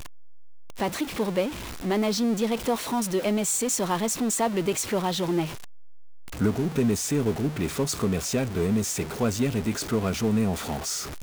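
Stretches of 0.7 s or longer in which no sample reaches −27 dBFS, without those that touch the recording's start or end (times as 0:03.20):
0:05.45–0:06.41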